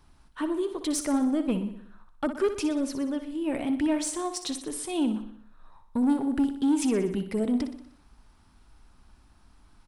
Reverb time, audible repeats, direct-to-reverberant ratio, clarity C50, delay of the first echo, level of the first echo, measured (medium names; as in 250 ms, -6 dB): no reverb, 5, no reverb, no reverb, 61 ms, -10.5 dB